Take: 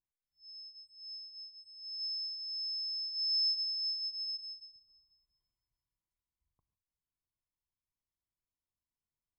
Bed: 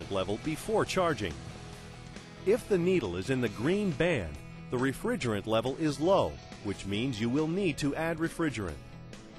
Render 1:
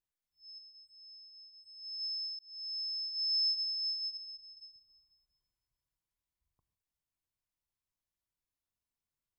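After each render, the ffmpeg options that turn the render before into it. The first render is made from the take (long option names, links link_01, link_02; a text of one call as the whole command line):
ffmpeg -i in.wav -filter_complex "[0:a]asettb=1/sr,asplit=3[link_01][link_02][link_03];[link_01]atrim=end=0.584[link_04];[link_02]atrim=start=0.58:end=1.64,asetpts=PTS-STARTPTS,afade=type=in:duration=0.004:curve=qsin,afade=type=out:start_time=1.056:duration=0.004:curve=qsin,acompressor=threshold=-56dB:ratio=2.5:attack=3.2:release=140:knee=1:detection=peak[link_05];[link_03]atrim=start=1.636[link_06];[link_04][link_05]acrossfade=duration=0.004:curve1=hsin:curve2=qsin[link_07];[link_07][link_06]acrossfade=duration=0.004:curve1=qsin:curve2=hsin,asettb=1/sr,asplit=3[link_08][link_09][link_10];[link_08]atrim=end=4.174[link_11];[link_09]atrim=start=4.17:end=4.57,asetpts=PTS-STARTPTS,afade=type=in:duration=0.004:curve=qsin,afade=type=out:start_time=0.396:duration=0.004:curve=qsin,aemphasis=mode=reproduction:type=75kf[link_12];[link_10]atrim=start=4.566[link_13];[link_11][link_12]acrossfade=duration=0.004:curve1=hsin:curve2=qsin[link_14];[link_14][link_13]acrossfade=duration=0.004:curve1=qsin:curve2=hsin,asplit=2[link_15][link_16];[link_15]atrim=end=2.39,asetpts=PTS-STARTPTS,afade=type=out:start_time=2.386:duration=0.004:curve=hsin[link_17];[link_16]atrim=start=2.39,asetpts=PTS-STARTPTS,afade=type=in:duration=0.41[link_18];[link_17][link_18]concat=n=2:v=0:a=1" out.wav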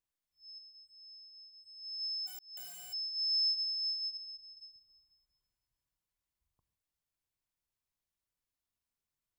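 ffmpeg -i in.wav -filter_complex "[0:a]asplit=3[link_01][link_02][link_03];[link_01]afade=type=out:start_time=2.26:duration=0.02[link_04];[link_02]aeval=exprs='(mod(133*val(0)+1,2)-1)/133':channel_layout=same,afade=type=in:start_time=2.26:duration=0.02,afade=type=out:start_time=2.92:duration=0.02[link_05];[link_03]afade=type=in:start_time=2.92:duration=0.02[link_06];[link_04][link_05][link_06]amix=inputs=3:normalize=0" out.wav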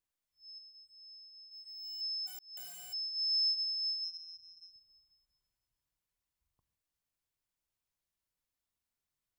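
ffmpeg -i in.wav -filter_complex "[0:a]asettb=1/sr,asplit=3[link_01][link_02][link_03];[link_01]atrim=end=1.514[link_04];[link_02]atrim=start=1.51:end=2.01,asetpts=PTS-STARTPTS,afade=type=in:duration=0.004:curve=qsin,afade=type=out:start_time=0.496:duration=0.004:curve=qsin,asplit=2[link_05][link_06];[link_06]highpass=frequency=720:poles=1,volume=17dB,asoftclip=type=tanh:threshold=-35.5dB[link_07];[link_05][link_07]amix=inputs=2:normalize=0,lowpass=frequency=3700:poles=1,volume=-6dB[link_08];[link_03]atrim=start=2.006[link_09];[link_04][link_08]acrossfade=duration=0.004:curve1=hsin:curve2=qsin[link_10];[link_10][link_09]acrossfade=duration=0.004:curve1=qsin:curve2=hsin,asettb=1/sr,asplit=3[link_11][link_12][link_13];[link_11]atrim=end=4.044[link_14];[link_12]atrim=start=4.04:end=4.72,asetpts=PTS-STARTPTS,afade=type=in:duration=0.004:curve=qsin,afade=type=out:start_time=0.676:duration=0.004:curve=qsin,aeval=exprs='val(0)*sin(2*PI*83*n/s)':channel_layout=same[link_15];[link_13]atrim=start=4.716[link_16];[link_14][link_15]acrossfade=duration=0.004:curve1=hsin:curve2=qsin[link_17];[link_17][link_16]acrossfade=duration=0.004:curve1=qsin:curve2=hsin" out.wav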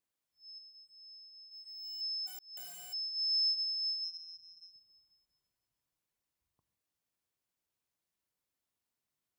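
ffmpeg -i in.wav -af "highpass=frequency=300:poles=1,lowshelf=frequency=490:gain=9" out.wav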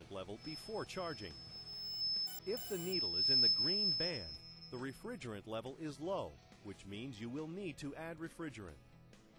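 ffmpeg -i in.wav -i bed.wav -filter_complex "[1:a]volume=-15dB[link_01];[0:a][link_01]amix=inputs=2:normalize=0" out.wav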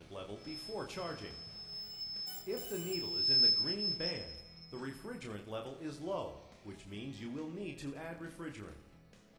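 ffmpeg -i in.wav -filter_complex "[0:a]asplit=2[link_01][link_02];[link_02]adelay=29,volume=-5dB[link_03];[link_01][link_03]amix=inputs=2:normalize=0,aecho=1:1:84|168|252|336|420|504:0.237|0.135|0.077|0.0439|0.025|0.0143" out.wav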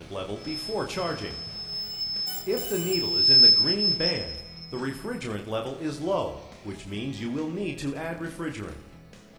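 ffmpeg -i in.wav -af "volume=12dB" out.wav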